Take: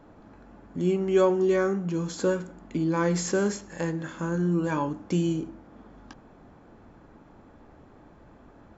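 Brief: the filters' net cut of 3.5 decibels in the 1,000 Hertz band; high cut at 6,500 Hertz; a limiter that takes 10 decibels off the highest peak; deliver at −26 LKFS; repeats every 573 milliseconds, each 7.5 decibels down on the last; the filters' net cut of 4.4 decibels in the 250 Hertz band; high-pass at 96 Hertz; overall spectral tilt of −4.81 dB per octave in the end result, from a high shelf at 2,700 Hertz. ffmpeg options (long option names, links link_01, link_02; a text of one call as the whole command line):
ffmpeg -i in.wav -af "highpass=96,lowpass=6500,equalizer=frequency=250:width_type=o:gain=-7.5,equalizer=frequency=1000:width_type=o:gain=-5,highshelf=frequency=2700:gain=8.5,alimiter=limit=-22.5dB:level=0:latency=1,aecho=1:1:573|1146|1719|2292|2865:0.422|0.177|0.0744|0.0312|0.0131,volume=5.5dB" out.wav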